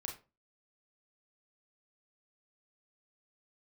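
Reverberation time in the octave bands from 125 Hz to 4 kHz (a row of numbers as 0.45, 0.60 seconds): 0.40, 0.40, 0.35, 0.30, 0.25, 0.20 seconds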